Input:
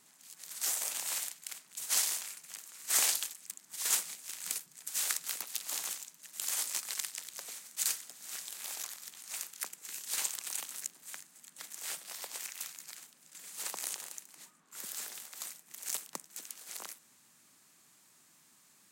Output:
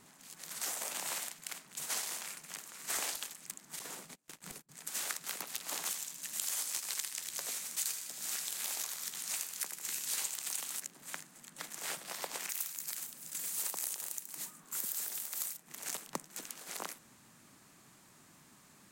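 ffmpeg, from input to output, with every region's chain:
ffmpeg -i in.wav -filter_complex "[0:a]asettb=1/sr,asplit=3[link_01][link_02][link_03];[link_01]atrim=end=3.794[link_04];[link_02]atrim=start=3.79:end=4.69,asetpts=PTS-STARTPTS,afade=type=in:duration=0.004:curve=qsin,afade=type=out:start_time=0.896:duration=0.004:curve=qsin,agate=range=-28dB:threshold=-44dB:ratio=16:release=100:detection=peak,tiltshelf=frequency=660:gain=6,acompressor=threshold=-45dB:ratio=4:attack=3.2:release=140:knee=1:detection=peak[link_05];[link_03]atrim=start=4.686[link_06];[link_04][link_05]acrossfade=duration=0.004:curve1=hsin:curve2=qsin[link_07];[link_07][link_06]acrossfade=duration=0.004:curve1=qsin:curve2=hsin,asettb=1/sr,asplit=3[link_08][link_09][link_10];[link_08]atrim=end=5.864[link_11];[link_09]atrim=start=5.86:end=10.8,asetpts=PTS-STARTPTS,afade=type=in:duration=0.004:curve=qsin,afade=type=out:start_time=4.936:duration=0.004:curve=qsin,highshelf=frequency=2600:gain=10,asplit=2[link_12][link_13];[link_13]adelay=14,volume=-13.5dB[link_14];[link_12][link_14]amix=inputs=2:normalize=0,atrim=end_sample=217854,aecho=1:1:78|156|234|312|390:0.299|0.128|0.0552|0.0237|0.0102,atrim=end_sample=217854[link_15];[link_10]atrim=start=10.796[link_16];[link_11][link_15]acrossfade=duration=0.004:curve1=hsin:curve2=qsin[link_17];[link_17][link_16]acrossfade=duration=0.004:curve1=qsin:curve2=hsin,asettb=1/sr,asplit=3[link_18][link_19][link_20];[link_18]atrim=end=12.494[link_21];[link_19]atrim=start=12.49:end=15.57,asetpts=PTS-STARTPTS,afade=type=in:duration=0.004:curve=qsin,afade=type=out:start_time=3.076:duration=0.004:curve=qsin,aemphasis=mode=production:type=75kf,asoftclip=type=hard:threshold=-8.5dB[link_22];[link_20]atrim=start=15.566[link_23];[link_21][link_22]acrossfade=duration=0.004:curve1=hsin:curve2=qsin[link_24];[link_24][link_23]acrossfade=duration=0.004:curve1=qsin:curve2=hsin,lowshelf=frequency=110:gain=10,acompressor=threshold=-36dB:ratio=4,highshelf=frequency=2200:gain=-9.5,volume=9dB" out.wav

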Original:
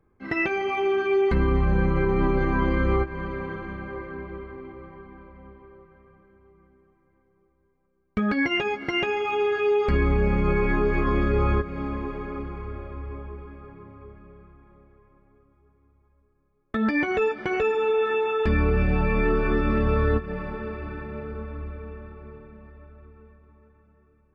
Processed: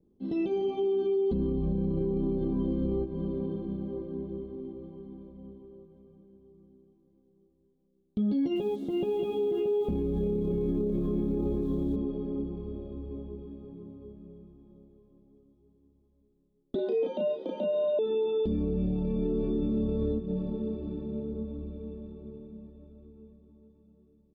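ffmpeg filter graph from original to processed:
ffmpeg -i in.wav -filter_complex "[0:a]asettb=1/sr,asplit=3[link_01][link_02][link_03];[link_01]atrim=end=8.564[link_04];[link_02]atrim=start=8.56:end=11.96,asetpts=PTS-STARTPTS,afade=type=in:duration=0.004:curve=qsin,afade=type=out:start_time=3.396:duration=0.004:curve=qsin,lowpass=frequency=3000:width=0.5412,lowpass=frequency=3000:width=1.3066,aecho=1:1:629:0.668,atrim=end_sample=149940,acrusher=bits=6:mix=0:aa=0.5[link_05];[link_03]atrim=start=11.956[link_06];[link_04][link_05]acrossfade=duration=0.004:curve1=hsin:curve2=qsin[link_07];[link_07][link_06]acrossfade=duration=0.004:curve1=qsin:curve2=hsin,asettb=1/sr,asplit=3[link_08][link_09][link_10];[link_08]atrim=end=16.754[link_11];[link_09]atrim=start=16.75:end=17.99,asetpts=PTS-STARTPTS,afade=type=in:duration=0.004:curve=qsin,afade=type=out:start_time=1.236:duration=0.004:curve=qsin,afreqshift=160,asplit=2[link_12][link_13];[link_13]adelay=33,volume=-2dB[link_14];[link_12][link_14]amix=inputs=2:normalize=0,atrim=end_sample=54684,acrossover=split=2800[link_15][link_16];[link_16]acompressor=threshold=-44dB:ratio=4:attack=1:release=60[link_17];[link_15][link_17]amix=inputs=2:normalize=0[link_18];[link_10]atrim=start=17.986[link_19];[link_11][link_18]acrossfade=duration=0.004:curve1=hsin:curve2=qsin[link_20];[link_20][link_19]acrossfade=duration=0.004:curve1=qsin:curve2=hsin,firequalizer=gain_entry='entry(120,0);entry(190,12);entry(1300,-20);entry(1900,-29);entry(3400,7);entry(5000,-6)':delay=0.05:min_phase=1,alimiter=limit=-16dB:level=0:latency=1:release=32,adynamicequalizer=threshold=0.00631:dfrequency=1800:dqfactor=0.7:tfrequency=1800:tqfactor=0.7:attack=5:release=100:ratio=0.375:range=2.5:mode=cutabove:tftype=highshelf,volume=-6.5dB" out.wav

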